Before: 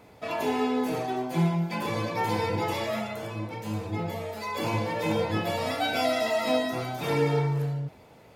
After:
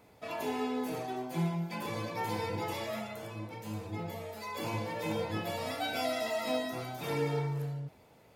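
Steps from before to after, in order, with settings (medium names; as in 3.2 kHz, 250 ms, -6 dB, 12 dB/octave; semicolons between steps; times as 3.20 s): treble shelf 7.7 kHz +6 dB; trim -7.5 dB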